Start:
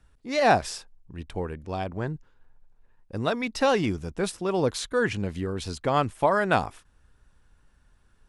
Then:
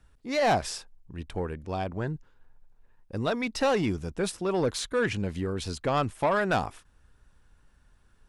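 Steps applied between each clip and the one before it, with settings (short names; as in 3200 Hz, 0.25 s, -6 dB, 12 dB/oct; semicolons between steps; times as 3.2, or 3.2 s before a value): soft clip -18 dBFS, distortion -13 dB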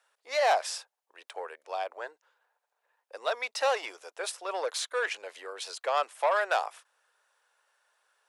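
steep high-pass 520 Hz 36 dB/oct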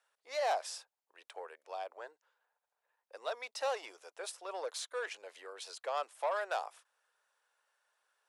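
dynamic EQ 2000 Hz, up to -4 dB, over -43 dBFS, Q 0.8; gain -7 dB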